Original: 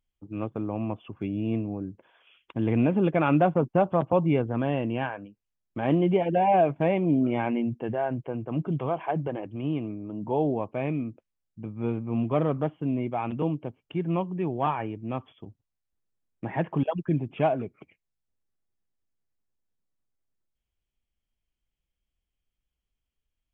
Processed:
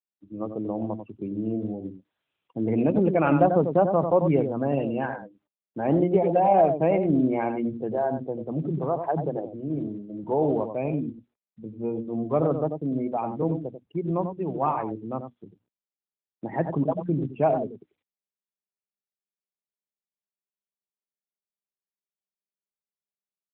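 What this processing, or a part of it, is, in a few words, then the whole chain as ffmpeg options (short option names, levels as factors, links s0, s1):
mobile call with aggressive noise cancelling: -filter_complex "[0:a]asettb=1/sr,asplit=3[s0][s1][s2];[s0]atrim=end=13.214[s3];[s1]atrim=start=13.21:end=14.39,asetpts=PTS-STARTPTS,afade=t=in:d=0.004:c=qsin,afade=t=out:st=1.176:d=0.004:c=qsin,acrossover=split=2700[s4][s5];[s5]acompressor=threshold=0.00112:ratio=4:attack=1:release=60[s6];[s4][s6]amix=inputs=2:normalize=0[s7];[s2]atrim=start=14.386[s8];[s3][s7]acrossfade=d=0.004:c1=hsin:c2=qsin[s9];[s9][s8]acrossfade=d=0.004:c1=qsin:c2=hsin,highpass=120,equalizer=f=500:w=1.6:g=2.5,bandreject=f=60:t=h:w=6,bandreject=f=120:t=h:w=6,bandreject=f=180:t=h:w=6,bandreject=f=240:t=h:w=6,bandreject=f=300:t=h:w=6,aecho=1:1:92:0.447,afftdn=nr=29:nf=-35,volume=1.12" -ar 8000 -c:a libopencore_amrnb -b:a 12200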